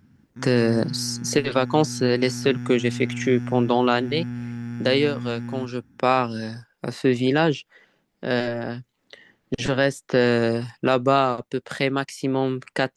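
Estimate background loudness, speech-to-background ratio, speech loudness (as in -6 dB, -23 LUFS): -33.0 LUFS, 10.0 dB, -23.0 LUFS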